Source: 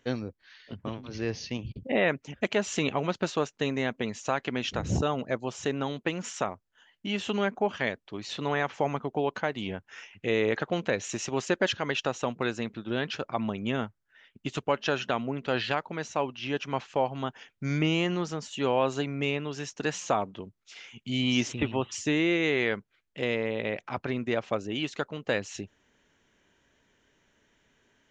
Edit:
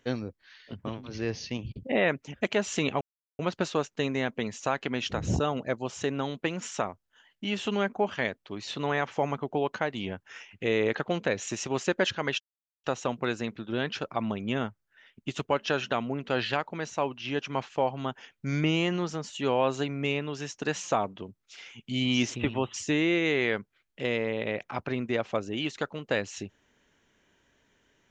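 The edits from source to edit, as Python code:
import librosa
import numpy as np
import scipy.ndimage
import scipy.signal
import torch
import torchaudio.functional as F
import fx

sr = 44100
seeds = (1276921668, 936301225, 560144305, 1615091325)

y = fx.edit(x, sr, fx.insert_silence(at_s=3.01, length_s=0.38),
    fx.insert_silence(at_s=12.02, length_s=0.44), tone=tone)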